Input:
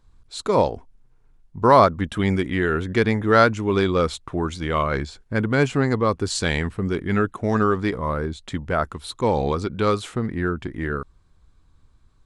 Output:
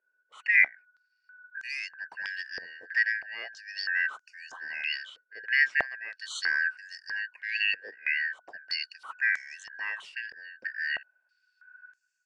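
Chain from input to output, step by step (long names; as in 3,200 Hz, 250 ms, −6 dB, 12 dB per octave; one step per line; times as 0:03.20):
band-splitting scrambler in four parts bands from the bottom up 3142
automatic gain control gain up to 4 dB
band-pass on a step sequencer 3.1 Hz 470–6,600 Hz
level −3 dB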